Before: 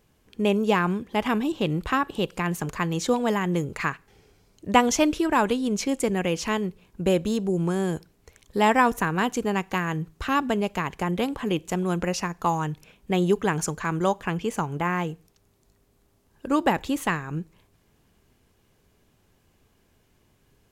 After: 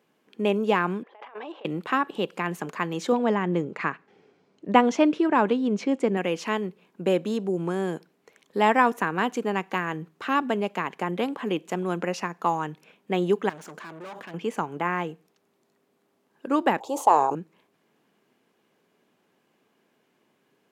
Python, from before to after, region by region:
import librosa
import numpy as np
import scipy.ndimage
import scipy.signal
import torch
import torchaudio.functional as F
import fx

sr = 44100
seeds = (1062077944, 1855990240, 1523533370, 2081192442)

y = fx.chain(x, sr, fx.highpass(hz=520.0, slope=24),
    fx.over_compress(threshold_db=-39.0, ratio=-1.0),
    fx.spacing_loss(db_at_10k=33), at=(1.03, 1.65))
y = fx.chain(y, sr, fx.lowpass(hz=7200.0, slope=12),
    fx.tilt_eq(slope=-1.5), at=(3.12, 6.17))
y = fx.chain(y, sr, fx.tube_stage(drive_db=37.0, bias=0.8),
    fx.sustainer(db_per_s=25.0), at=(13.49, 14.34))
y = fx.chain(y, sr, fx.curve_eq(hz=(110.0, 170.0, 380.0, 860.0, 1800.0, 3100.0, 4500.0, 6700.0, 11000.0), db=(0, -21, 1, 14, -23, -8, -1, 5, -1)),
    fx.sustainer(db_per_s=46.0), at=(16.8, 17.35))
y = scipy.signal.sosfilt(scipy.signal.butter(4, 180.0, 'highpass', fs=sr, output='sos'), y)
y = fx.bass_treble(y, sr, bass_db=-3, treble_db=-9)